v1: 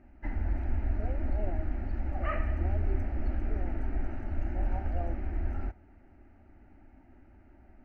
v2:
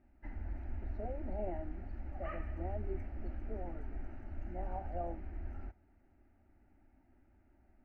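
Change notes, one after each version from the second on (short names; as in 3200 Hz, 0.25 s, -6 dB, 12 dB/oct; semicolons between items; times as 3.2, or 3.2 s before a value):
background -11.0 dB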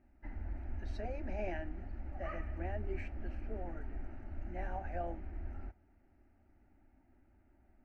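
speech: remove polynomial smoothing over 65 samples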